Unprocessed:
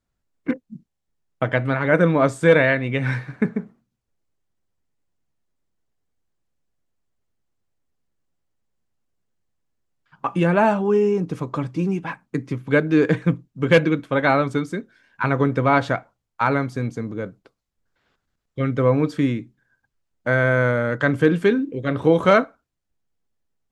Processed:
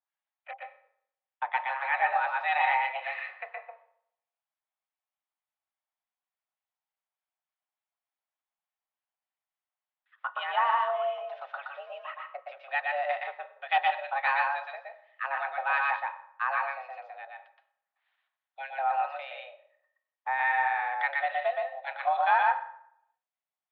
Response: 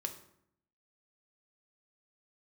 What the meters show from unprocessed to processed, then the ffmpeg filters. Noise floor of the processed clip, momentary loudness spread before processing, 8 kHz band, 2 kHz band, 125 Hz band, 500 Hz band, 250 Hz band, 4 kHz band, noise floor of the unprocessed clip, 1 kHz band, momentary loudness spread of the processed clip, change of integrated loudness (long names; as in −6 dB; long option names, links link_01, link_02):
below −85 dBFS, 13 LU, can't be measured, −5.5 dB, below −40 dB, −17.0 dB, below −40 dB, −6.5 dB, −79 dBFS, −1.0 dB, 18 LU, −8.5 dB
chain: -filter_complex "[0:a]acrossover=split=1100[link_01][link_02];[link_01]aeval=exprs='val(0)*(1-0.7/2+0.7/2*cos(2*PI*3.4*n/s))':channel_layout=same[link_03];[link_02]aeval=exprs='val(0)*(1-0.7/2-0.7/2*cos(2*PI*3.4*n/s))':channel_layout=same[link_04];[link_03][link_04]amix=inputs=2:normalize=0,highpass=frequency=440:width_type=q:width=0.5412,highpass=frequency=440:width_type=q:width=1.307,lowpass=frequency=3400:width_type=q:width=0.5176,lowpass=frequency=3400:width_type=q:width=0.7071,lowpass=frequency=3400:width_type=q:width=1.932,afreqshift=270,asplit=2[link_05][link_06];[1:a]atrim=start_sample=2205,adelay=120[link_07];[link_06][link_07]afir=irnorm=-1:irlink=0,volume=-0.5dB[link_08];[link_05][link_08]amix=inputs=2:normalize=0,aeval=exprs='0.447*(cos(1*acos(clip(val(0)/0.447,-1,1)))-cos(1*PI/2))+0.00355*(cos(2*acos(clip(val(0)/0.447,-1,1)))-cos(2*PI/2))':channel_layout=same,volume=-6dB"